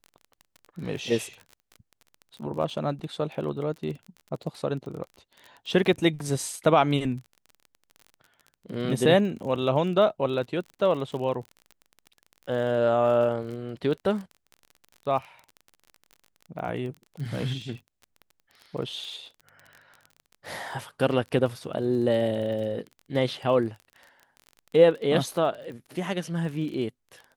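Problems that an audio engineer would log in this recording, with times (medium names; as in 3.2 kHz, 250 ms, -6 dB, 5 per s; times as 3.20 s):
crackle 28 per s -35 dBFS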